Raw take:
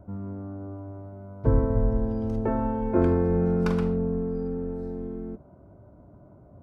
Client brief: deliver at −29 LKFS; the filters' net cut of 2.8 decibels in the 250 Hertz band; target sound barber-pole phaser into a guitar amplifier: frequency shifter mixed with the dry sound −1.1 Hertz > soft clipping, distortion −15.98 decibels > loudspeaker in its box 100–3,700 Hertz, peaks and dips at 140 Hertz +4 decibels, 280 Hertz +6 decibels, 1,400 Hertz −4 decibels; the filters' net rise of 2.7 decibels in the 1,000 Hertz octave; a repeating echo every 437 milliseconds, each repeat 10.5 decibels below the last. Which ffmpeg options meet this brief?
ffmpeg -i in.wav -filter_complex "[0:a]equalizer=frequency=250:width_type=o:gain=-7,equalizer=frequency=1000:width_type=o:gain=4,aecho=1:1:437|874|1311:0.299|0.0896|0.0269,asplit=2[link_01][link_02];[link_02]afreqshift=-1.1[link_03];[link_01][link_03]amix=inputs=2:normalize=1,asoftclip=threshold=-21dB,highpass=100,equalizer=frequency=140:width_type=q:width=4:gain=4,equalizer=frequency=280:width_type=q:width=4:gain=6,equalizer=frequency=1400:width_type=q:width=4:gain=-4,lowpass=frequency=3700:width=0.5412,lowpass=frequency=3700:width=1.3066,volume=5dB" out.wav

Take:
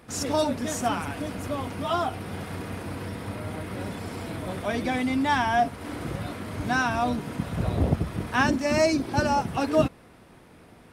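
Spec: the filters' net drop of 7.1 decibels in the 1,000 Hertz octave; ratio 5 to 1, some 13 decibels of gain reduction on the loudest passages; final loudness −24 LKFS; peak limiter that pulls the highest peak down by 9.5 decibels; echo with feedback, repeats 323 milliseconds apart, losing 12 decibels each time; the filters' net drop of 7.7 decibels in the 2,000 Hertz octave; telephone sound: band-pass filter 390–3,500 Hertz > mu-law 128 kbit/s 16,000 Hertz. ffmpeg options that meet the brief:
ffmpeg -i in.wav -af "equalizer=frequency=1000:width_type=o:gain=-8.5,equalizer=frequency=2000:width_type=o:gain=-6.5,acompressor=threshold=-33dB:ratio=5,alimiter=level_in=7.5dB:limit=-24dB:level=0:latency=1,volume=-7.5dB,highpass=390,lowpass=3500,aecho=1:1:323|646|969:0.251|0.0628|0.0157,volume=21dB" -ar 16000 -c:a pcm_mulaw out.wav

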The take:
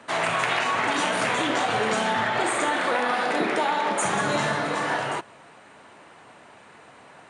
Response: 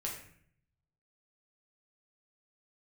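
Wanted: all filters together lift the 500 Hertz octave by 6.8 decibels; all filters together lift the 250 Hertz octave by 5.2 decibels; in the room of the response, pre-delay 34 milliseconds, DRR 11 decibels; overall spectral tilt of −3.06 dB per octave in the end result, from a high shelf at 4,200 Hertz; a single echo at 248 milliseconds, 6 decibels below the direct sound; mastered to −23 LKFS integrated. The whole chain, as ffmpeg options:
-filter_complex "[0:a]equalizer=frequency=250:width_type=o:gain=4,equalizer=frequency=500:width_type=o:gain=7.5,highshelf=frequency=4200:gain=7,aecho=1:1:248:0.501,asplit=2[link_01][link_02];[1:a]atrim=start_sample=2205,adelay=34[link_03];[link_02][link_03]afir=irnorm=-1:irlink=0,volume=-12dB[link_04];[link_01][link_04]amix=inputs=2:normalize=0,volume=-4dB"

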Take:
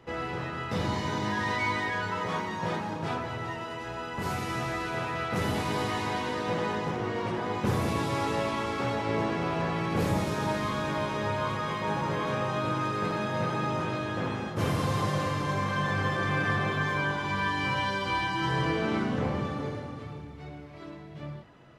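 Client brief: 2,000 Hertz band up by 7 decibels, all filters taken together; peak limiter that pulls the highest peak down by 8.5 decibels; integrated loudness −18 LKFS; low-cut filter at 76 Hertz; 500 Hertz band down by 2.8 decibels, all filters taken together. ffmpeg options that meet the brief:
ffmpeg -i in.wav -af "highpass=76,equalizer=frequency=500:width_type=o:gain=-4,equalizer=frequency=2000:width_type=o:gain=9,volume=11.5dB,alimiter=limit=-9.5dB:level=0:latency=1" out.wav

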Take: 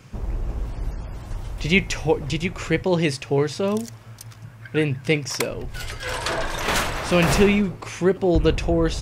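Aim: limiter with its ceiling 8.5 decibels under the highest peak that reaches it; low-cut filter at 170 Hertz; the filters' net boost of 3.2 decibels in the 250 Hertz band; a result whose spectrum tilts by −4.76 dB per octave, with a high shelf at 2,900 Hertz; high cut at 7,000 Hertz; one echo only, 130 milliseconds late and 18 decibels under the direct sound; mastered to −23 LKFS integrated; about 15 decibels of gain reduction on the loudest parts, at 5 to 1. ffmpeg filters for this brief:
ffmpeg -i in.wav -af "highpass=170,lowpass=7000,equalizer=frequency=250:width_type=o:gain=7,highshelf=frequency=2900:gain=-6.5,acompressor=threshold=-28dB:ratio=5,alimiter=limit=-23dB:level=0:latency=1,aecho=1:1:130:0.126,volume=11.5dB" out.wav

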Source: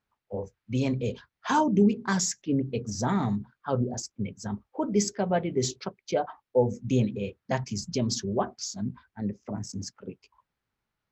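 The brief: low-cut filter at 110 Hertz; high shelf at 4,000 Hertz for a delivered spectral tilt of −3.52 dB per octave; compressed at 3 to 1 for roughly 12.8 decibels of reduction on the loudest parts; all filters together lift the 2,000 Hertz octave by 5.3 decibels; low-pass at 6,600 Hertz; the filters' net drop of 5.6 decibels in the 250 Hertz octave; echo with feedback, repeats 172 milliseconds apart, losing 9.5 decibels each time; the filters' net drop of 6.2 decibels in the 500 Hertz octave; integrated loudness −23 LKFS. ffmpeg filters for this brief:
ffmpeg -i in.wav -af "highpass=110,lowpass=6600,equalizer=frequency=250:width_type=o:gain=-5.5,equalizer=frequency=500:width_type=o:gain=-6.5,equalizer=frequency=2000:width_type=o:gain=6,highshelf=frequency=4000:gain=8.5,acompressor=threshold=-39dB:ratio=3,aecho=1:1:172|344|516|688:0.335|0.111|0.0365|0.012,volume=17dB" out.wav

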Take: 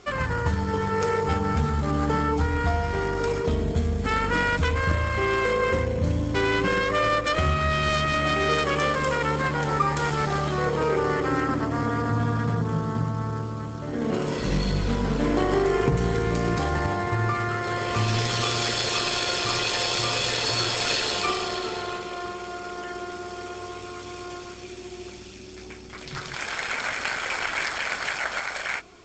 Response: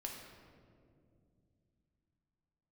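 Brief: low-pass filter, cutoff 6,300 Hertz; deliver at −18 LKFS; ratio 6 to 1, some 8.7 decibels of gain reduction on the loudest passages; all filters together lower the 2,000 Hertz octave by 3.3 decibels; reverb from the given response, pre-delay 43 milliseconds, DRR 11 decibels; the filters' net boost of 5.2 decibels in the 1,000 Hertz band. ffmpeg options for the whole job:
-filter_complex "[0:a]lowpass=6300,equalizer=frequency=1000:width_type=o:gain=9,equalizer=frequency=2000:width_type=o:gain=-8,acompressor=threshold=-23dB:ratio=6,asplit=2[link_01][link_02];[1:a]atrim=start_sample=2205,adelay=43[link_03];[link_02][link_03]afir=irnorm=-1:irlink=0,volume=-9dB[link_04];[link_01][link_04]amix=inputs=2:normalize=0,volume=9.5dB"

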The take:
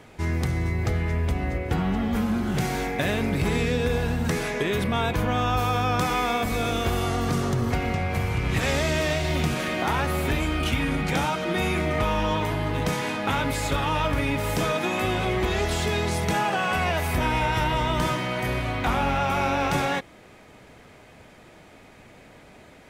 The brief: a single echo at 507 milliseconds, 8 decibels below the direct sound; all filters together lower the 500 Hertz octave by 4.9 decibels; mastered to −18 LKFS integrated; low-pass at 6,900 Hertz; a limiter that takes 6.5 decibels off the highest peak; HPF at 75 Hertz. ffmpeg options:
ffmpeg -i in.wav -af "highpass=75,lowpass=6900,equalizer=frequency=500:width_type=o:gain=-6.5,alimiter=limit=-19.5dB:level=0:latency=1,aecho=1:1:507:0.398,volume=10dB" out.wav

